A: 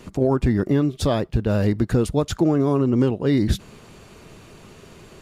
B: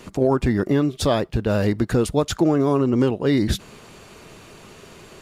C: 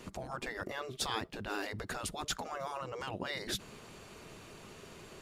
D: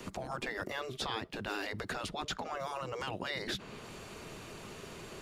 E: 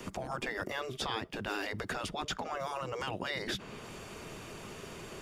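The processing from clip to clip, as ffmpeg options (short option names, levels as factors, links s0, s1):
-af "lowshelf=f=290:g=-6.5,volume=1.5"
-af "afftfilt=real='re*lt(hypot(re,im),0.282)':imag='im*lt(hypot(re,im),0.282)':win_size=1024:overlap=0.75,volume=0.422"
-filter_complex "[0:a]acrossover=split=120|790|1900|4900[s0][s1][s2][s3][s4];[s0]acompressor=threshold=0.00158:ratio=4[s5];[s1]acompressor=threshold=0.00631:ratio=4[s6];[s2]acompressor=threshold=0.00447:ratio=4[s7];[s3]acompressor=threshold=0.00708:ratio=4[s8];[s4]acompressor=threshold=0.001:ratio=4[s9];[s5][s6][s7][s8][s9]amix=inputs=5:normalize=0,volume=1.68"
-af "bandreject=f=4100:w=10,volume=1.19"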